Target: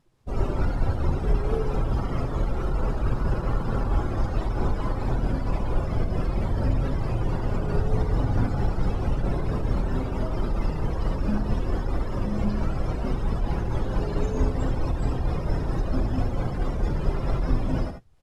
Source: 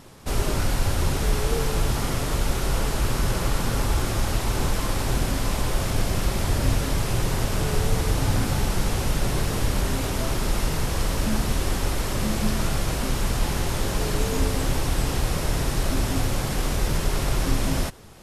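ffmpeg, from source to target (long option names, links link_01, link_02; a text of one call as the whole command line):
ffmpeg -i in.wav -filter_complex "[0:a]asetrate=42845,aresample=44100,atempo=1.0293,afftdn=noise_reduction=22:noise_floor=-31,asplit=2[link_01][link_02];[link_02]aecho=0:1:54|72|88:0.119|0.316|0.112[link_03];[link_01][link_03]amix=inputs=2:normalize=0,tremolo=f=4.5:d=0.29,highshelf=frequency=8500:gain=-7.5" out.wav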